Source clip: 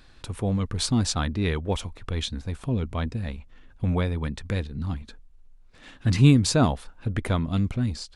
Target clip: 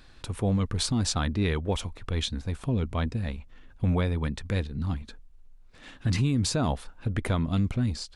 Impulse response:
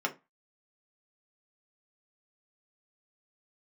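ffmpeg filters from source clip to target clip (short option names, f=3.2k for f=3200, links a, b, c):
-af "alimiter=limit=-17.5dB:level=0:latency=1:release=60"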